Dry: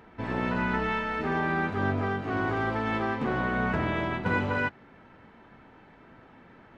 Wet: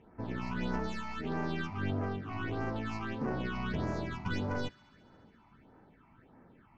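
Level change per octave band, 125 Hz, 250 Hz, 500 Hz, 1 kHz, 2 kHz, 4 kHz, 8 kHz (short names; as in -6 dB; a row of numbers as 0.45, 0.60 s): -4.5 dB, -6.0 dB, -8.5 dB, -10.5 dB, -12.0 dB, -4.0 dB, n/a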